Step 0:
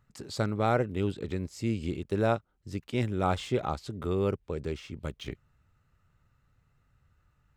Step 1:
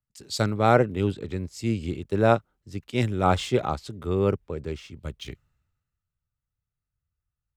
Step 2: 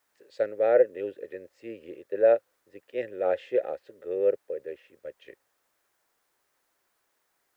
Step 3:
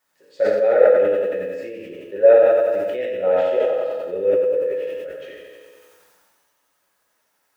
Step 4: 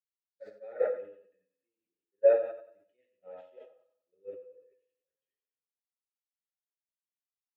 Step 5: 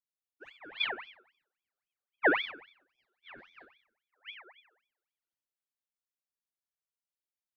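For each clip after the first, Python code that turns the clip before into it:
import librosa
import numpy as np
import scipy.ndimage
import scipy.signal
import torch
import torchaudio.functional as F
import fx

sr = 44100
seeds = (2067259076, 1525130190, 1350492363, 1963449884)

y1 = fx.band_widen(x, sr, depth_pct=70)
y1 = F.gain(torch.from_numpy(y1), 4.5).numpy()
y2 = fx.vowel_filter(y1, sr, vowel='e')
y2 = fx.dmg_noise_colour(y2, sr, seeds[0], colour='white', level_db=-75.0)
y2 = fx.band_shelf(y2, sr, hz=770.0, db=9.5, octaves=3.0)
y2 = F.gain(torch.from_numpy(y2), -2.0).numpy()
y3 = fx.echo_feedback(y2, sr, ms=91, feedback_pct=58, wet_db=-5.5)
y3 = fx.rev_fdn(y3, sr, rt60_s=1.2, lf_ratio=0.7, hf_ratio=1.0, size_ms=32.0, drr_db=-4.0)
y3 = fx.sustainer(y3, sr, db_per_s=25.0)
y3 = F.gain(torch.from_numpy(y3), -1.0).numpy()
y4 = fx.bin_expand(y3, sr, power=1.5)
y4 = fx.upward_expand(y4, sr, threshold_db=-37.0, expansion=2.5)
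y4 = F.gain(torch.from_numpy(y4), -7.5).numpy()
y5 = fx.ring_lfo(y4, sr, carrier_hz=1900.0, swing_pct=55, hz=3.7)
y5 = F.gain(torch.from_numpy(y5), -1.5).numpy()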